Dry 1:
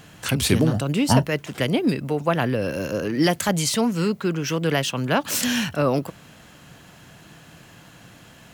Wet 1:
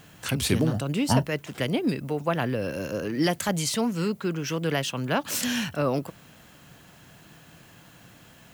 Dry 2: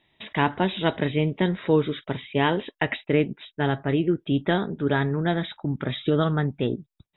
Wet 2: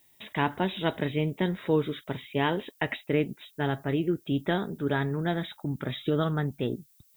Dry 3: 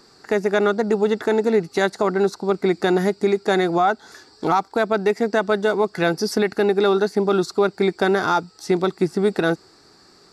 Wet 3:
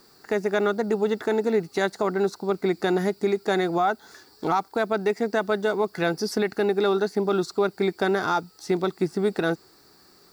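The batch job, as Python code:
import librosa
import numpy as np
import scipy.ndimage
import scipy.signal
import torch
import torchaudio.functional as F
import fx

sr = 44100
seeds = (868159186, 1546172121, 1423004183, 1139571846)

y = fx.dmg_noise_colour(x, sr, seeds[0], colour='violet', level_db=-58.0)
y = F.gain(torch.from_numpy(y), -4.5).numpy()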